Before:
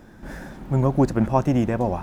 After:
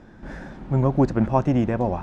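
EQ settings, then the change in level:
high-frequency loss of the air 98 metres
0.0 dB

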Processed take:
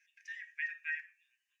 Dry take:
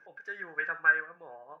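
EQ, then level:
Chebyshev high-pass with heavy ripple 1,800 Hz, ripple 9 dB
+8.5 dB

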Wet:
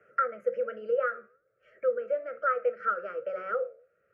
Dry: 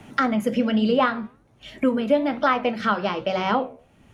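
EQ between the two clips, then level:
pair of resonant band-passes 820 Hz, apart 1.4 octaves
phaser with its sweep stopped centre 1,000 Hz, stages 6
0.0 dB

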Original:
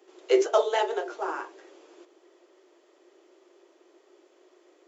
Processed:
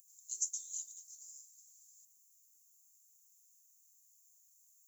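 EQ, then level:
inverse Chebyshev band-stop filter 280–2,400 Hz, stop band 80 dB
high-shelf EQ 4,600 Hz +11 dB
parametric band 6,500 Hz +5 dB 0.27 octaves
+18.0 dB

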